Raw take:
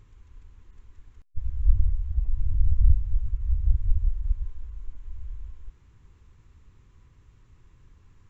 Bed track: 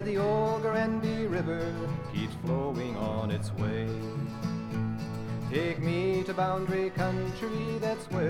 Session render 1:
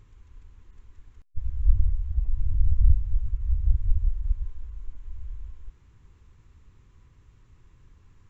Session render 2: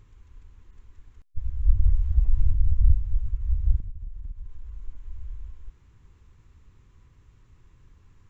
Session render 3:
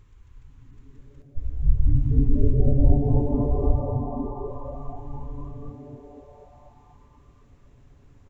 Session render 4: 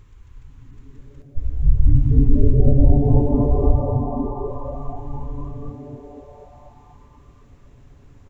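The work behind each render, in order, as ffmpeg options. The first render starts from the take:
-af anull
-filter_complex "[0:a]asplit=3[s0][s1][s2];[s0]afade=t=out:st=1.84:d=0.02[s3];[s1]acontrast=30,afade=t=in:st=1.84:d=0.02,afade=t=out:st=2.51:d=0.02[s4];[s2]afade=t=in:st=2.51:d=0.02[s5];[s3][s4][s5]amix=inputs=3:normalize=0,asettb=1/sr,asplit=3[s6][s7][s8];[s6]atrim=end=3.804[s9];[s7]atrim=start=3.8:end=4.83,asetpts=PTS-STARTPTS,afade=t=in:d=0.004:c=qsin,afade=t=out:st=1.026:d=0.004:c=qsin,acompressor=threshold=0.0282:ratio=8:attack=3.2:release=140:knee=1:detection=peak[s10];[s8]atrim=start=4.826[s11];[s9][s10]acrossfade=d=0.004:c1=hsin:c2=qsin[s12];[s12][s11]acrossfade=d=0.004:c1=qsin:c2=hsin"
-filter_complex "[0:a]asplit=9[s0][s1][s2][s3][s4][s5][s6][s7][s8];[s1]adelay=243,afreqshift=-150,volume=0.398[s9];[s2]adelay=486,afreqshift=-300,volume=0.243[s10];[s3]adelay=729,afreqshift=-450,volume=0.148[s11];[s4]adelay=972,afreqshift=-600,volume=0.0902[s12];[s5]adelay=1215,afreqshift=-750,volume=0.055[s13];[s6]adelay=1458,afreqshift=-900,volume=0.0335[s14];[s7]adelay=1701,afreqshift=-1050,volume=0.0204[s15];[s8]adelay=1944,afreqshift=-1200,volume=0.0124[s16];[s0][s9][s10][s11][s12][s13][s14][s15][s16]amix=inputs=9:normalize=0"
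-af "volume=1.88,alimiter=limit=0.708:level=0:latency=1"

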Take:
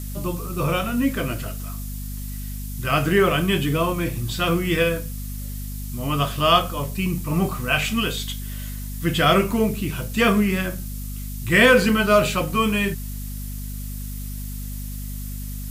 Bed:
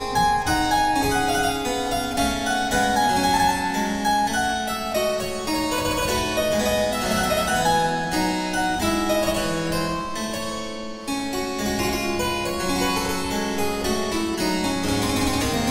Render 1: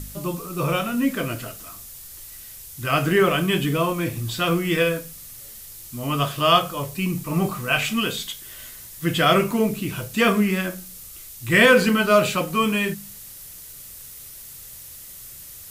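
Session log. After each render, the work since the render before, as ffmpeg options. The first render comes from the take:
-af "bandreject=f=50:t=h:w=4,bandreject=f=100:t=h:w=4,bandreject=f=150:t=h:w=4,bandreject=f=200:t=h:w=4,bandreject=f=250:t=h:w=4"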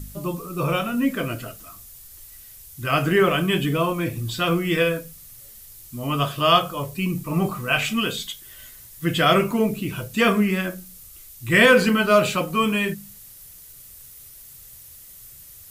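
-af "afftdn=nr=6:nf=-41"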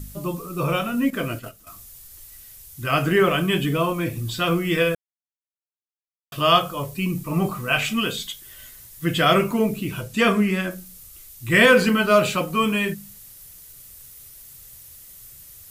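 -filter_complex "[0:a]asettb=1/sr,asplit=3[s0][s1][s2];[s0]atrim=end=1.104[s3];[s1]atrim=start=1.1:end=1.67,asetpts=PTS-STARTPTS,afade=t=in:d=0.004:c=qsin,afade=t=out:st=0.566:d=0.004:c=qsin,agate=range=0.355:threshold=0.0178:ratio=16:release=100:detection=peak[s4];[s2]atrim=start=1.666[s5];[s3][s4]acrossfade=d=0.004:c1=hsin:c2=qsin[s6];[s6][s5]acrossfade=d=0.004:c1=qsin:c2=hsin,asettb=1/sr,asplit=3[s7][s8][s9];[s7]atrim=end=10.014[s10];[s8]atrim=start=10.01:end=10.71,asetpts=PTS-STARTPTS,afade=t=in:d=0.004:c=qsin,afade=t=out:st=0.696:d=0.004:c=qsin,lowpass=12000[s11];[s9]atrim=start=10.706[s12];[s10][s11]acrossfade=d=0.004:c1=hsin:c2=qsin[s13];[s13][s12]acrossfade=d=0.004:c1=qsin:c2=hsin,asplit=3[s14][s15][s16];[s14]atrim=end=4.95,asetpts=PTS-STARTPTS,afade=t=out:st=4.946:d=0.004:c=hsin[s17];[s15]atrim=start=4.95:end=6.32,asetpts=PTS-STARTPTS,volume=0[s18];[s16]atrim=start=6.32,asetpts=PTS-STARTPTS,afade=t=in:d=0.004:c=hsin[s19];[s17][s18][s19]concat=n=3:v=0:a=1"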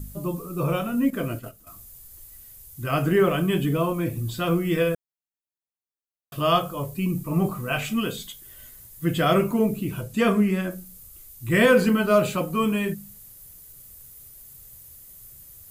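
-af "equalizer=f=3100:w=0.37:g=-8,bandreject=f=5600:w=25"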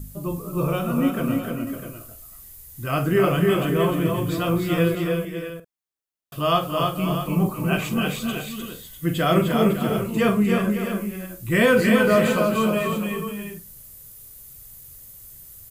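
-filter_complex "[0:a]asplit=2[s0][s1];[s1]adelay=47,volume=0.251[s2];[s0][s2]amix=inputs=2:normalize=0,asplit=2[s3][s4];[s4]aecho=0:1:272|302|552|650:0.237|0.631|0.266|0.299[s5];[s3][s5]amix=inputs=2:normalize=0"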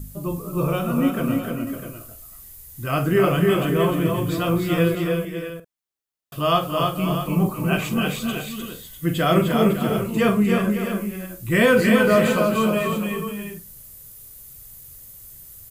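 -af "volume=1.12"

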